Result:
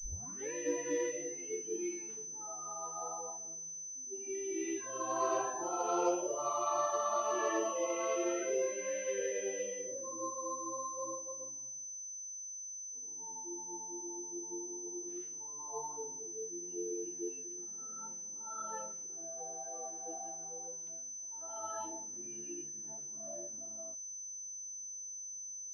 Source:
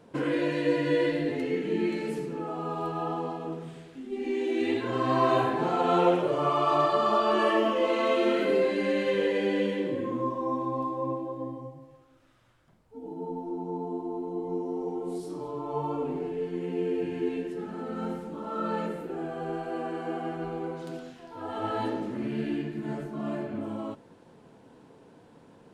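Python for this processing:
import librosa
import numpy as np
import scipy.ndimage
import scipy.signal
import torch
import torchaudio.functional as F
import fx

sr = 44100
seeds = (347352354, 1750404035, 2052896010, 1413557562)

y = fx.tape_start_head(x, sr, length_s=0.52)
y = fx.noise_reduce_blind(y, sr, reduce_db=18)
y = fx.pwm(y, sr, carrier_hz=6100.0)
y = F.gain(torch.from_numpy(y), -9.0).numpy()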